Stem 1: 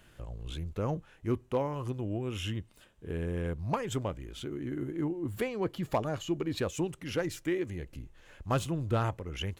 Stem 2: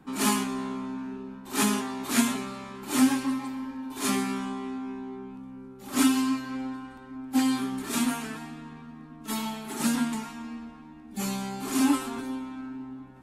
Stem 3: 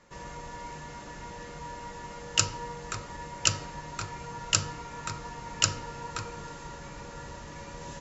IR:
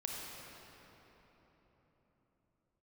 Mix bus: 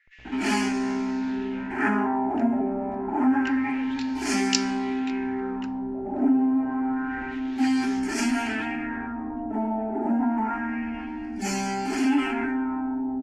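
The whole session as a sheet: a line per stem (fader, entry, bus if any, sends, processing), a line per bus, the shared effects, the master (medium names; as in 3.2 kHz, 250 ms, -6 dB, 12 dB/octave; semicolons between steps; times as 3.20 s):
-17.0 dB, 0.00 s, no send, Schmitt trigger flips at -48 dBFS
-0.5 dB, 0.25 s, no send, static phaser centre 760 Hz, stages 8; level flattener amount 50%
-3.0 dB, 0.00 s, no send, steep high-pass 1.7 kHz 48 dB/octave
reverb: none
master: LFO low-pass sine 0.28 Hz 620–5300 Hz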